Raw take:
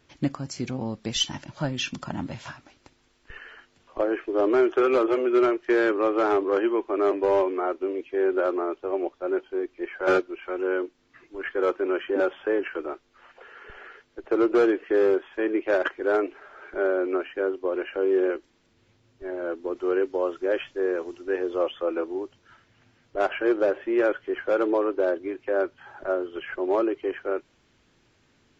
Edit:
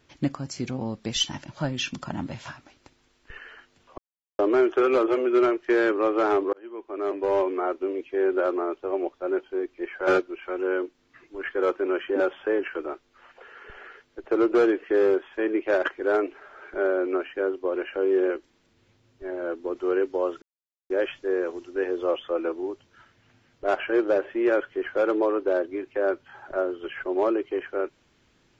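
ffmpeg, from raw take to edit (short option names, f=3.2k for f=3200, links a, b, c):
-filter_complex "[0:a]asplit=5[a][b][c][d][e];[a]atrim=end=3.98,asetpts=PTS-STARTPTS,afade=t=out:st=3.976:d=0.004:c=hsin[f];[b]atrim=start=3.98:end=4.39,asetpts=PTS-STARTPTS,volume=0[g];[c]atrim=start=4.39:end=6.53,asetpts=PTS-STARTPTS,afade=t=in:d=0.004:c=hsin,afade=t=out:st=2.136:d=0.004:c=hsin[h];[d]atrim=start=6.53:end=20.42,asetpts=PTS-STARTPTS,afade=t=in:d=0.99,afade=t=out:st=13.886:d=0.004:c=hsin,apad=pad_dur=0.48[i];[e]atrim=start=20.42,asetpts=PTS-STARTPTS,afade=t=in:d=0.004:c=hsin[j];[f][g][h][i][j]concat=n=5:v=0:a=1"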